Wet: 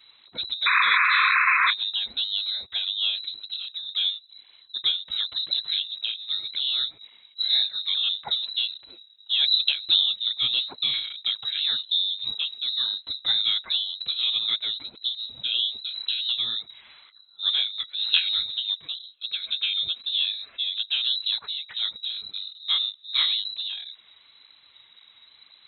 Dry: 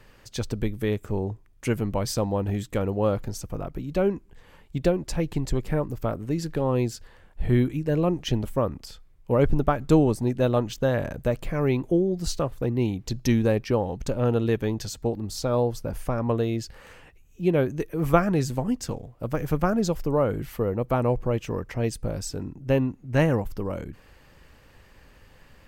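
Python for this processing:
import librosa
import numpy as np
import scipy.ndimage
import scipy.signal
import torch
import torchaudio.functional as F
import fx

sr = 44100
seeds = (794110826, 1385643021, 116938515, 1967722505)

y = fx.spec_paint(x, sr, seeds[0], shape='noise', start_s=0.66, length_s=1.05, low_hz=1300.0, high_hz=2900.0, level_db=-17.0)
y = fx.high_shelf(y, sr, hz=2500.0, db=-8.0, at=(3.78, 4.85))
y = fx.notch_comb(y, sr, f0_hz=1000.0, at=(19.09, 20.76))
y = fx.freq_invert(y, sr, carrier_hz=3900)
y = fx.flanger_cancel(y, sr, hz=1.9, depth_ms=7.1)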